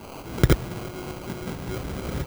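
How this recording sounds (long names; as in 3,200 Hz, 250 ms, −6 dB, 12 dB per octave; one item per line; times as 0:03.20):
a quantiser's noise floor 6 bits, dither triangular
tremolo saw up 4.5 Hz, depth 35%
phaser sweep stages 12, 3 Hz, lowest notch 750–1,800 Hz
aliases and images of a low sample rate 1,800 Hz, jitter 0%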